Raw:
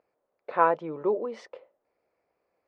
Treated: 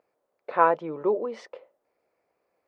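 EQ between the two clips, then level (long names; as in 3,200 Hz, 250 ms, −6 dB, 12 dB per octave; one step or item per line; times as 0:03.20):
low-shelf EQ 84 Hz −7 dB
+2.0 dB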